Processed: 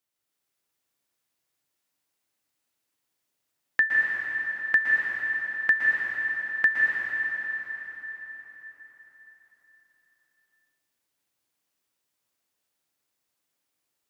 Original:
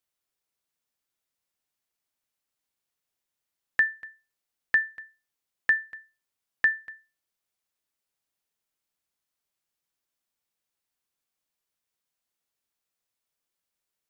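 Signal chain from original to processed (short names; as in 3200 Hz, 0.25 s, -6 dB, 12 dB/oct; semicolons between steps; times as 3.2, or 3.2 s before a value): HPF 72 Hz; bell 300 Hz +5.5 dB 0.26 oct; plate-style reverb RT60 4.7 s, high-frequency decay 0.8×, pre-delay 0.105 s, DRR -4.5 dB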